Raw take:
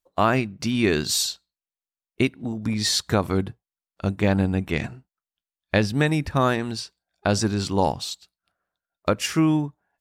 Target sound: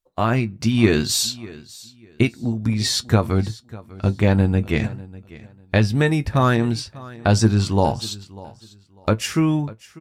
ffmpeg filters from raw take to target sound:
-af "lowshelf=f=170:g=8.5,dynaudnorm=f=110:g=9:m=11.5dB,flanger=delay=7.8:depth=1.4:regen=56:speed=0.72:shape=triangular,aecho=1:1:596|1192:0.1|0.023,volume=2dB"

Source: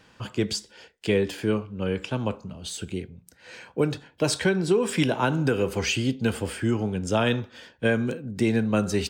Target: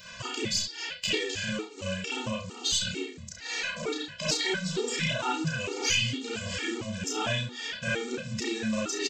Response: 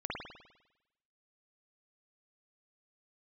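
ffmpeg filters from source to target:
-filter_complex "[0:a]bandreject=f=50:t=h:w=6,bandreject=f=100:t=h:w=6,bandreject=f=150:t=h:w=6,bandreject=f=200:t=h:w=6,bandreject=f=250:t=h:w=6,bandreject=f=300:t=h:w=6,bandreject=f=350:t=h:w=6,bandreject=f=400:t=h:w=6,bandreject=f=450:t=h:w=6,bandreject=f=500:t=h:w=6,acompressor=threshold=-40dB:ratio=4,aresample=16000,acrusher=bits=5:mode=log:mix=0:aa=0.000001,aresample=44100,crystalizer=i=8:c=0,aeval=exprs='0.282*(cos(1*acos(clip(val(0)/0.282,-1,1)))-cos(1*PI/2))+0.0158*(cos(2*acos(clip(val(0)/0.282,-1,1)))-cos(2*PI/2))+0.02*(cos(5*acos(clip(val(0)/0.282,-1,1)))-cos(5*PI/2))+0.00282*(cos(6*acos(clip(val(0)/0.282,-1,1)))-cos(6*PI/2))+0.01*(cos(7*acos(clip(val(0)/0.282,-1,1)))-cos(7*PI/2))':c=same,aecho=1:1:32|69:0.668|0.299[a];[1:a]atrim=start_sample=2205,atrim=end_sample=4410[b];[a][b]afir=irnorm=-1:irlink=0,afftfilt=real='re*gt(sin(2*PI*2.2*pts/sr)*(1-2*mod(floor(b*sr/1024/240),2)),0)':imag='im*gt(sin(2*PI*2.2*pts/sr)*(1-2*mod(floor(b*sr/1024/240),2)),0)':win_size=1024:overlap=0.75,volume=5dB"

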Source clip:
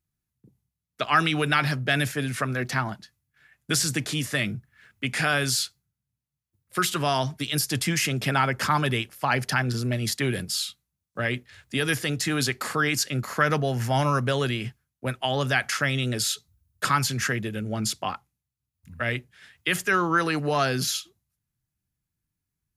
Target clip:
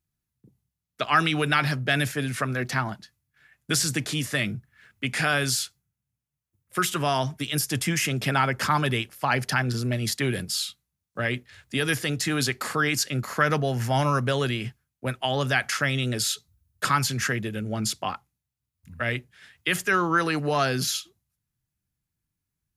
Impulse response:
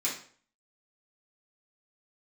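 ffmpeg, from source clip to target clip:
-filter_complex "[0:a]asettb=1/sr,asplit=3[a][b][c];[a]atrim=end=5.554[d];[b]atrim=start=5.55:end=8.08,asetpts=PTS-STARTPTS,afade=t=in:d=0.004:c=qsin,afade=t=out:st=2.526:d=0.004:c=qsin,equalizer=f=4.3k:t=o:w=0.41:g=-5.5[e];[c]atrim=start=8.076[f];[d][e]acrossfade=d=0.004:c1=hsin:c2=qsin[g];[g][f]acrossfade=d=0.004:c1=qsin:c2=hsin"

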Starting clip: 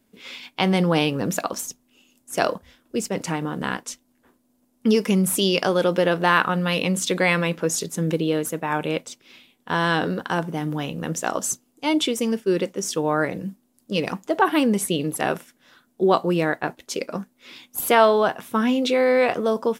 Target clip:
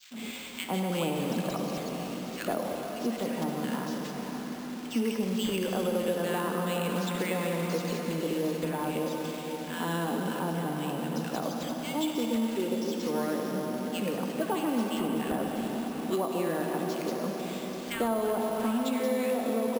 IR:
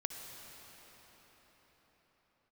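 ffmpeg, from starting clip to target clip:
-filter_complex "[0:a]aeval=exprs='val(0)+0.5*0.0316*sgn(val(0))':c=same,highpass=180,equalizer=f=230:w=7.1:g=12.5,agate=range=-33dB:threshold=-31dB:ratio=3:detection=peak,acrossover=split=1600|5700[a][b][c];[a]adelay=100[d];[c]adelay=180[e];[d][b][e]amix=inputs=3:normalize=0[f];[1:a]atrim=start_sample=2205,asetrate=48510,aresample=44100[g];[f][g]afir=irnorm=-1:irlink=0,acrossover=split=290|3100[h][i][j];[j]acompressor=mode=upward:threshold=-44dB:ratio=2.5[k];[h][i][k]amix=inputs=3:normalize=0,adynamicequalizer=threshold=0.0112:dfrequency=1800:dqfactor=1.1:tfrequency=1800:tqfactor=1.1:attack=5:release=100:ratio=0.375:range=2:mode=cutabove:tftype=bell,acrossover=split=560|3700[l][m][n];[l]acompressor=threshold=-24dB:ratio=4[o];[m]acompressor=threshold=-28dB:ratio=4[p];[n]acompressor=threshold=-40dB:ratio=4[q];[o][p][q]amix=inputs=3:normalize=0,acrusher=samples=4:mix=1:aa=0.000001,volume=-5dB"

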